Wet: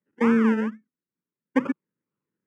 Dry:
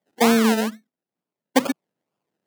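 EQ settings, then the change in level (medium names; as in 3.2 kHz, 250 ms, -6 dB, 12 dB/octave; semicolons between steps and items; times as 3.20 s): dynamic bell 700 Hz, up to +5 dB, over -30 dBFS, Q 0.88; tape spacing loss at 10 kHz 30 dB; static phaser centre 1.7 kHz, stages 4; 0.0 dB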